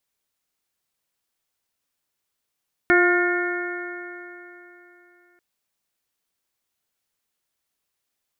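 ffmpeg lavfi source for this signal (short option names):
-f lavfi -i "aevalsrc='0.158*pow(10,-3*t/3.29)*sin(2*PI*351.32*t)+0.0668*pow(10,-3*t/3.29)*sin(2*PI*704.52*t)+0.0251*pow(10,-3*t/3.29)*sin(2*PI*1061.5*t)+0.133*pow(10,-3*t/3.29)*sin(2*PI*1424.07*t)+0.112*pow(10,-3*t/3.29)*sin(2*PI*1794.05*t)+0.0668*pow(10,-3*t/3.29)*sin(2*PI*2173.16*t)':d=2.49:s=44100"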